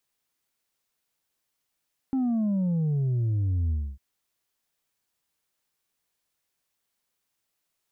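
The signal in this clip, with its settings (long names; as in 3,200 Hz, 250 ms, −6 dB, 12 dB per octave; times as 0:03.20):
bass drop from 270 Hz, over 1.85 s, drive 3 dB, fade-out 0.27 s, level −23 dB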